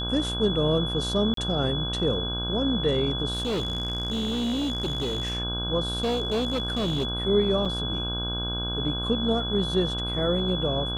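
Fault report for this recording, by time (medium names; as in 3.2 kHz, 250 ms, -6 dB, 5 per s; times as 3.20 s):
buzz 60 Hz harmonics 27 -32 dBFS
whine 3.4 kHz -30 dBFS
1.34–1.37 s: dropout 33 ms
3.33–5.37 s: clipped -24 dBFS
5.92–7.07 s: clipped -22 dBFS
7.65–7.66 s: dropout 5.3 ms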